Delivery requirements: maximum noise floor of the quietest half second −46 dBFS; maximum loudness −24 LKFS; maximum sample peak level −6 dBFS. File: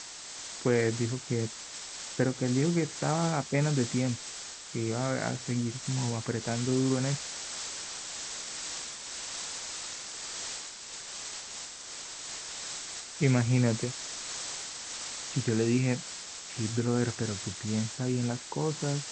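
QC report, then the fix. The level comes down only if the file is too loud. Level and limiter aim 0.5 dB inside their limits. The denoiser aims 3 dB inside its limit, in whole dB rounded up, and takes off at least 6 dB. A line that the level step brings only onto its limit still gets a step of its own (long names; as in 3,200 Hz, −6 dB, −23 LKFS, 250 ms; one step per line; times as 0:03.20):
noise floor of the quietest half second −43 dBFS: out of spec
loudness −32.0 LKFS: in spec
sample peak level −12.0 dBFS: in spec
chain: broadband denoise 6 dB, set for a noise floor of −43 dBFS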